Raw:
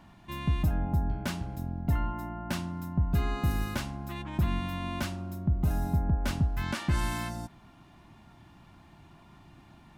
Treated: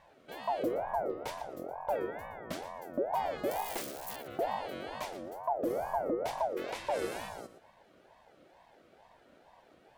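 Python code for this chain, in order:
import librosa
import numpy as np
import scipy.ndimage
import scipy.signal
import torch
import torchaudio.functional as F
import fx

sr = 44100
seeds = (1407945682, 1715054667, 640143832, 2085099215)

y = fx.crossing_spikes(x, sr, level_db=-27.0, at=(3.51, 4.16))
y = fx.peak_eq(y, sr, hz=480.0, db=-6.0, octaves=0.92)
y = fx.echo_feedback(y, sr, ms=118, feedback_pct=18, wet_db=-13.0)
y = fx.ring_lfo(y, sr, carrier_hz=630.0, swing_pct=35, hz=2.2)
y = y * librosa.db_to_amplitude(-3.5)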